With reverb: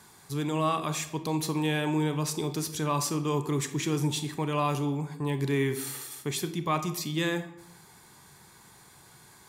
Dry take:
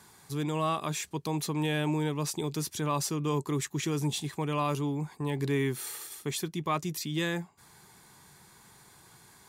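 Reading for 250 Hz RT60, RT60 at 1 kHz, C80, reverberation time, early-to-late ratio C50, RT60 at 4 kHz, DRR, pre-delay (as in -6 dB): 0.90 s, 0.75 s, 13.5 dB, 0.80 s, 11.0 dB, 0.50 s, 8.5 dB, 26 ms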